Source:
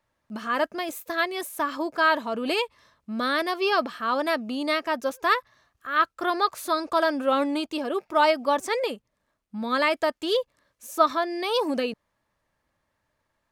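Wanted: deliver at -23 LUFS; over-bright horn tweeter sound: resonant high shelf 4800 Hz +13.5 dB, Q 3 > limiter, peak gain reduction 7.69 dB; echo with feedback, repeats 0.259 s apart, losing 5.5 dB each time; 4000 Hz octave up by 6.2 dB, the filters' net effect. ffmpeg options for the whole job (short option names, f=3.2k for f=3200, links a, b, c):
-af "equalizer=f=4k:t=o:g=8,highshelf=f=4.8k:t=q:w=3:g=13.5,aecho=1:1:259|518|777|1036|1295|1554|1813:0.531|0.281|0.149|0.079|0.0419|0.0222|0.0118,volume=1dB,alimiter=limit=-11.5dB:level=0:latency=1"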